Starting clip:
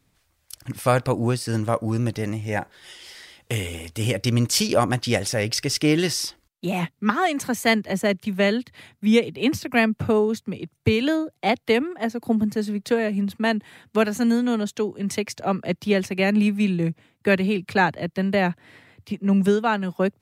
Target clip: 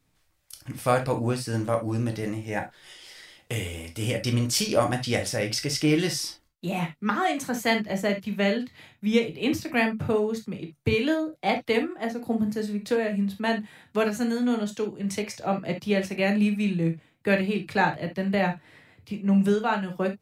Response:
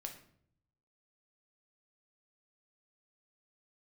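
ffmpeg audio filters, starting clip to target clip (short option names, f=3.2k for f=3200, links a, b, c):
-filter_complex "[0:a]asettb=1/sr,asplit=3[a][b][c];[a]atrim=end=7.484[d];[b]atrim=start=7.48:end=9.22,asetpts=PTS-STARTPTS,afade=t=in:d=0.004:c=qsin,afade=t=out:st=1.736:d=0.004:c=qsin,equalizer=f=9.2k:w=5.7:g=-10[e];[c]atrim=start=9.216[f];[d][e]acrossfade=d=0.004:c1=hsin:c2=qsin[g];[g][f]acrossfade=d=0.004:c1=qsin:c2=hsin[h];[1:a]atrim=start_sample=2205,atrim=end_sample=3528[i];[h][i]afir=irnorm=-1:irlink=0"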